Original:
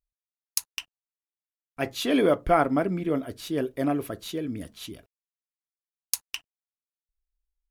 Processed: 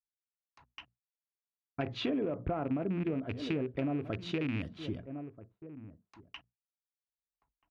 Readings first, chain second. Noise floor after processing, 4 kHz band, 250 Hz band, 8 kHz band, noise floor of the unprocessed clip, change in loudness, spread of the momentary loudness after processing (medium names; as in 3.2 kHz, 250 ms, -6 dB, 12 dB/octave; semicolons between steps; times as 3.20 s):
under -85 dBFS, -9.0 dB, -6.5 dB, under -30 dB, under -85 dBFS, -8.5 dB, 19 LU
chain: rattle on loud lows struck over -34 dBFS, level -20 dBFS; echo from a far wall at 220 m, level -21 dB; low-pass that closes with the level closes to 1.2 kHz, closed at -22.5 dBFS; high-pass 77 Hz; hum notches 60/120/180/240 Hz; peak limiter -18 dBFS, peak gain reduction 11.5 dB; peaking EQ 110 Hz +4.5 dB 0.67 oct; gate with hold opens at -53 dBFS; bass shelf 380 Hz +8 dB; level-controlled noise filter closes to 1.4 kHz, open at -20 dBFS; compression 5:1, threshold -31 dBFS, peak gain reduction 13 dB; tape noise reduction on one side only decoder only